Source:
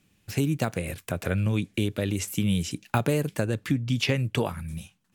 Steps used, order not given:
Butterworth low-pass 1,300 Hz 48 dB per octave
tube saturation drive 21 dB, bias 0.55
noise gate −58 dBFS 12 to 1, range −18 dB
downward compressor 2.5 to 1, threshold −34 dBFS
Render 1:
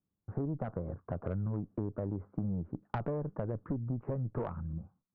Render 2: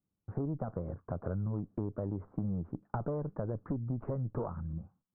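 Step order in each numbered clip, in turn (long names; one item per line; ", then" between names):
noise gate, then Butterworth low-pass, then tube saturation, then downward compressor
noise gate, then tube saturation, then Butterworth low-pass, then downward compressor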